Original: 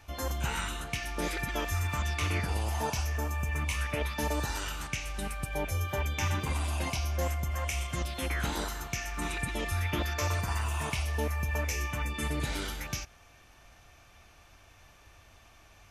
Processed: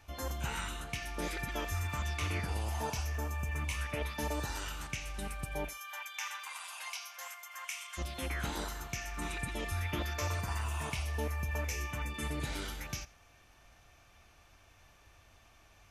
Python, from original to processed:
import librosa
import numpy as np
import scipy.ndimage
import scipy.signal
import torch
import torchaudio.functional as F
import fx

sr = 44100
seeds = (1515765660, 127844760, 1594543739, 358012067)

y = fx.highpass(x, sr, hz=990.0, slope=24, at=(5.68, 7.97), fade=0.02)
y = y + 10.0 ** (-20.5 / 20.0) * np.pad(y, (int(83 * sr / 1000.0), 0))[:len(y)]
y = F.gain(torch.from_numpy(y), -4.5).numpy()